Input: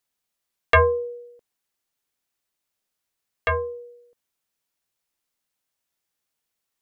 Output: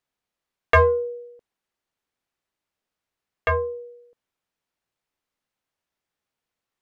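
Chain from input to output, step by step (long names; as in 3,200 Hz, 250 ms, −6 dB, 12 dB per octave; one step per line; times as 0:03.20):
low-pass filter 2,200 Hz 6 dB per octave
in parallel at −9.5 dB: soft clipping −19.5 dBFS, distortion −9 dB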